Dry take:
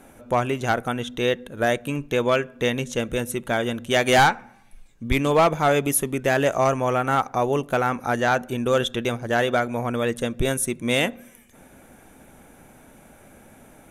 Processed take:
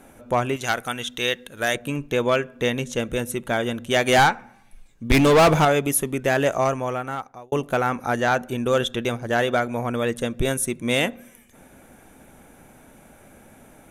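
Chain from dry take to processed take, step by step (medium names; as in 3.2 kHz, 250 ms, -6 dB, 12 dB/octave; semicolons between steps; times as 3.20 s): 0.56–1.75 s: tilt shelf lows -7 dB, about 1.3 kHz; 5.10–5.65 s: waveshaping leveller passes 3; 6.51–7.52 s: fade out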